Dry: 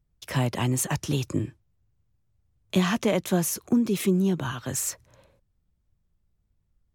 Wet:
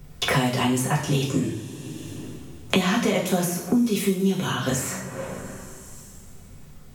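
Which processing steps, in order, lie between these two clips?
two-slope reverb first 0.44 s, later 2 s, from -22 dB, DRR -4.5 dB; three-band squash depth 100%; gain -2.5 dB

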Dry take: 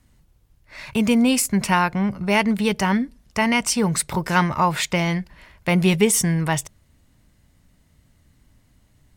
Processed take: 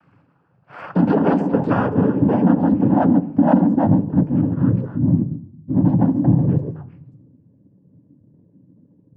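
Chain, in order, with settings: moving spectral ripple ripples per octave 1.2, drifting +2.1 Hz, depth 20 dB; 4.8–5.8 inverse Chebyshev band-stop 650–1900 Hz, stop band 80 dB; limiter -9 dBFS, peak gain reduction 8.5 dB; delay with a stepping band-pass 0.135 s, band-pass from 290 Hz, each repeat 1.4 oct, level -4.5 dB; low-pass sweep 1300 Hz -> 240 Hz, 0.11–3.2; sine folder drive 8 dB, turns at -2.5 dBFS; noise vocoder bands 8; reverb RT60 0.85 s, pre-delay 7 ms, DRR 10 dB; gain -9 dB

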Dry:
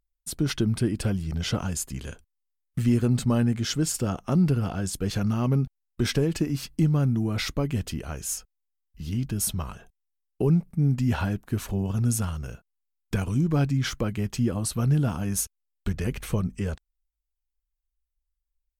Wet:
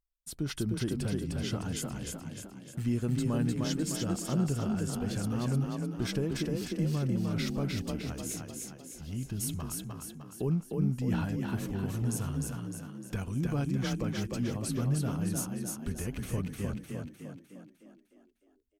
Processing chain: frequency-shifting echo 0.304 s, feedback 51%, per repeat +30 Hz, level -3 dB; gain -8.5 dB

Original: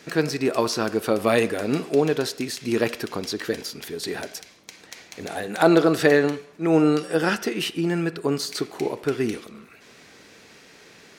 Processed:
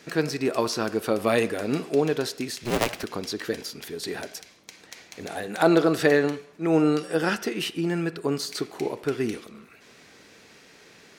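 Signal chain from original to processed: 2.63–3.04 cycle switcher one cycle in 2, inverted; gain -2.5 dB

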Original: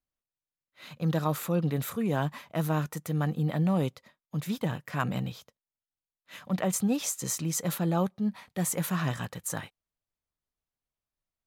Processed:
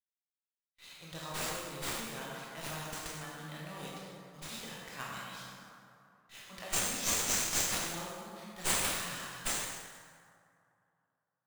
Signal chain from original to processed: gate with hold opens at -49 dBFS; pre-emphasis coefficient 0.97; reverb RT60 2.7 s, pre-delay 13 ms, DRR -6.5 dB; running maximum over 3 samples

